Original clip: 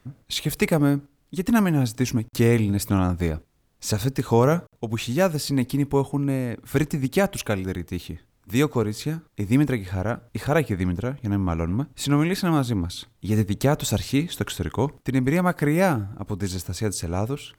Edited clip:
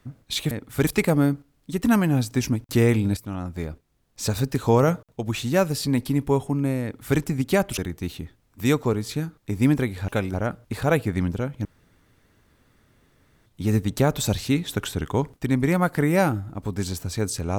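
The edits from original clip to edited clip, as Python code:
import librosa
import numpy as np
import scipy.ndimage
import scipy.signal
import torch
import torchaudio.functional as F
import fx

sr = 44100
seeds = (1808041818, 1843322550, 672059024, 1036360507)

y = fx.edit(x, sr, fx.fade_in_from(start_s=2.81, length_s=1.23, floor_db=-14.0),
    fx.duplicate(start_s=6.47, length_s=0.36, to_s=0.51),
    fx.move(start_s=7.42, length_s=0.26, to_s=9.98),
    fx.room_tone_fill(start_s=11.29, length_s=1.81), tone=tone)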